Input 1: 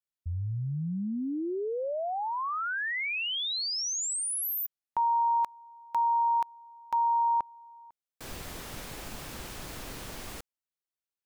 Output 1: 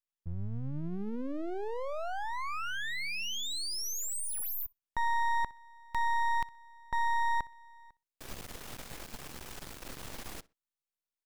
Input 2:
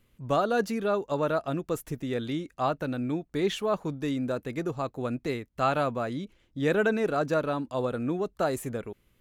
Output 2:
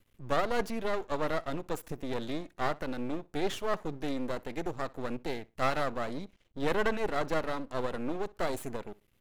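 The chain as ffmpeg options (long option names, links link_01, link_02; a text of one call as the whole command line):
ffmpeg -i in.wav -filter_complex "[0:a]asplit=2[link_01][link_02];[link_02]adelay=62,lowpass=frequency=4200:poles=1,volume=-22dB,asplit=2[link_03][link_04];[link_04]adelay=62,lowpass=frequency=4200:poles=1,volume=0.24[link_05];[link_01][link_03][link_05]amix=inputs=3:normalize=0,aeval=exprs='max(val(0),0)':channel_layout=same" out.wav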